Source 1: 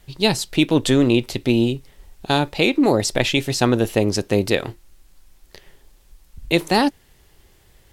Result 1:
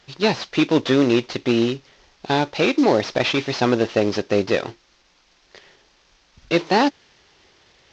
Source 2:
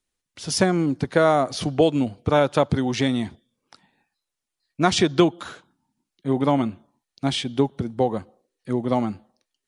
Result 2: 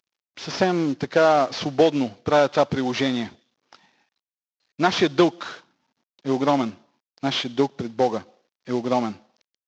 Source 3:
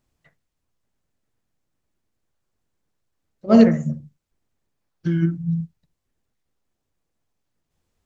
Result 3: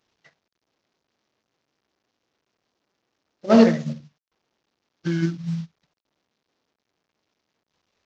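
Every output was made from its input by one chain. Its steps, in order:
CVSD 32 kbps; HPF 350 Hz 6 dB/oct; gain +3.5 dB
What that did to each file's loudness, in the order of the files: -1.0, 0.0, -1.0 LU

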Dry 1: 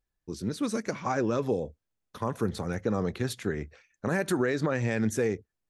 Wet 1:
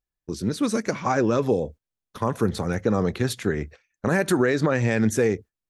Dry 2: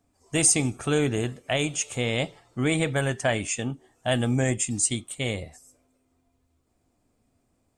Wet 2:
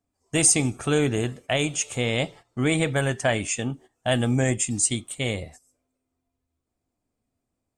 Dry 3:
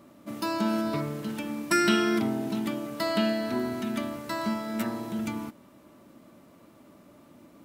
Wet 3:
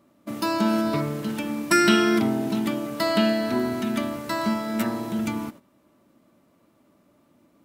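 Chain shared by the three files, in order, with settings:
gate -46 dBFS, range -12 dB; match loudness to -24 LUFS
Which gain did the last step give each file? +6.0, +1.5, +5.0 dB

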